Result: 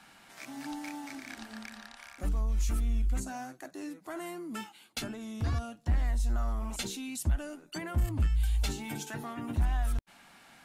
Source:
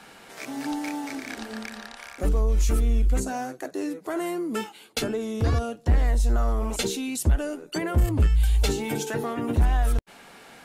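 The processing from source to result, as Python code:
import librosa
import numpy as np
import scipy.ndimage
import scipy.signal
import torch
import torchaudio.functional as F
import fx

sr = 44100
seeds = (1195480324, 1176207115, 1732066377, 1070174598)

y = fx.peak_eq(x, sr, hz=450.0, db=-13.0, octaves=0.55)
y = F.gain(torch.from_numpy(y), -7.5).numpy()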